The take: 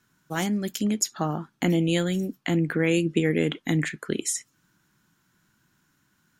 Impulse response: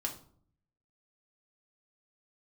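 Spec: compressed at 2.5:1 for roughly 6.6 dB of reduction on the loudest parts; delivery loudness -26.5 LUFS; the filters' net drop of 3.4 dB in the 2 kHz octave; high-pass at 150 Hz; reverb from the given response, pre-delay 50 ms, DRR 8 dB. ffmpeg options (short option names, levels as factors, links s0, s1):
-filter_complex "[0:a]highpass=150,equalizer=f=2000:t=o:g=-4,acompressor=threshold=0.0355:ratio=2.5,asplit=2[s0][s1];[1:a]atrim=start_sample=2205,adelay=50[s2];[s1][s2]afir=irnorm=-1:irlink=0,volume=0.335[s3];[s0][s3]amix=inputs=2:normalize=0,volume=1.78"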